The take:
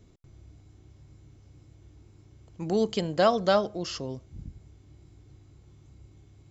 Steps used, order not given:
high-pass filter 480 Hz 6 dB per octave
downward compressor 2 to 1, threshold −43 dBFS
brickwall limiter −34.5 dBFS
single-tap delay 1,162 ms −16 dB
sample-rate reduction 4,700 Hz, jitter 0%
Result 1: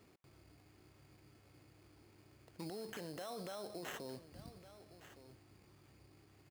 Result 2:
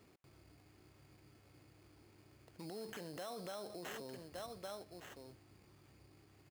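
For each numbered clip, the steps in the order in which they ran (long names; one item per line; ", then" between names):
sample-rate reduction, then high-pass filter, then brickwall limiter, then single-tap delay, then downward compressor
sample-rate reduction, then single-tap delay, then brickwall limiter, then high-pass filter, then downward compressor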